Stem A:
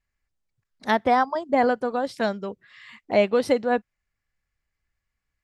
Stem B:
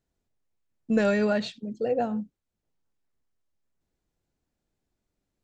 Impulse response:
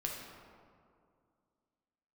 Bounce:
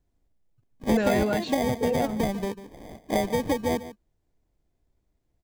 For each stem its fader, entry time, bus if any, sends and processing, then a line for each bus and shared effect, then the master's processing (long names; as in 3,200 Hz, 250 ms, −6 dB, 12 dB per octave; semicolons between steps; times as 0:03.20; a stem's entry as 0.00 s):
−2.5 dB, 0.00 s, no send, echo send −14.5 dB, decimation without filtering 32×; low-shelf EQ 460 Hz +11 dB; downward compressor 6 to 1, threshold −19 dBFS, peak gain reduction 10.5 dB
−2.0 dB, 0.00 s, no send, no echo send, no processing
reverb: not used
echo: single-tap delay 146 ms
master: no processing